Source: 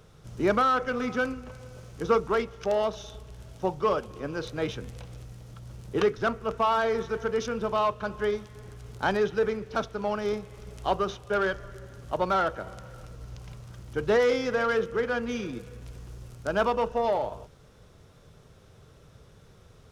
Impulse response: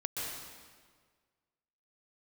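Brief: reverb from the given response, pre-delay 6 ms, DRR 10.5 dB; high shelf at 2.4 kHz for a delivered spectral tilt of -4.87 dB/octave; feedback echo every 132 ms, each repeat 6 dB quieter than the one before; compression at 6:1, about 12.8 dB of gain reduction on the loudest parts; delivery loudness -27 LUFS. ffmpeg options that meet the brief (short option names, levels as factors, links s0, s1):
-filter_complex "[0:a]highshelf=f=2400:g=6.5,acompressor=threshold=0.0251:ratio=6,aecho=1:1:132|264|396|528|660|792:0.501|0.251|0.125|0.0626|0.0313|0.0157,asplit=2[s0][s1];[1:a]atrim=start_sample=2205,adelay=6[s2];[s1][s2]afir=irnorm=-1:irlink=0,volume=0.2[s3];[s0][s3]amix=inputs=2:normalize=0,volume=2.82"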